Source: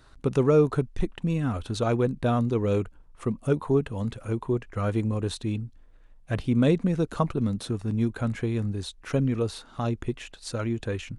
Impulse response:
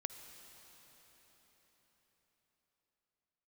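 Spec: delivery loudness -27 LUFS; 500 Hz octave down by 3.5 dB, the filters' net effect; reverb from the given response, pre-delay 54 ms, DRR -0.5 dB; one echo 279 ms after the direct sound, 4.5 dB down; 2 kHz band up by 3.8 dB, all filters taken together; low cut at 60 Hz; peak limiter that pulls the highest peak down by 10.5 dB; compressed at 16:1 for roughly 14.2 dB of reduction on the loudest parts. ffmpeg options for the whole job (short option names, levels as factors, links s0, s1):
-filter_complex "[0:a]highpass=60,equalizer=f=500:t=o:g=-4.5,equalizer=f=2000:t=o:g=5.5,acompressor=threshold=0.0251:ratio=16,alimiter=level_in=2.82:limit=0.0631:level=0:latency=1,volume=0.355,aecho=1:1:279:0.596,asplit=2[s0][s1];[1:a]atrim=start_sample=2205,adelay=54[s2];[s1][s2]afir=irnorm=-1:irlink=0,volume=1.26[s3];[s0][s3]amix=inputs=2:normalize=0,volume=3.55"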